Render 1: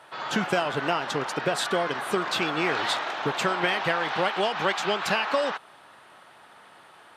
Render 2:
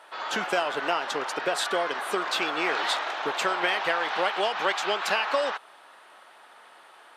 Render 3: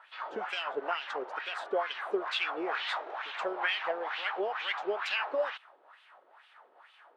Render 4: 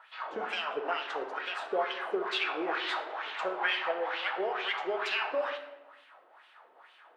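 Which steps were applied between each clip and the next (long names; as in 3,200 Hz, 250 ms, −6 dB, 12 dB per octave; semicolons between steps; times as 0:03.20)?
high-pass filter 380 Hz 12 dB per octave
LFO wah 2.2 Hz 390–3,100 Hz, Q 2.5
convolution reverb RT60 1.0 s, pre-delay 6 ms, DRR 6 dB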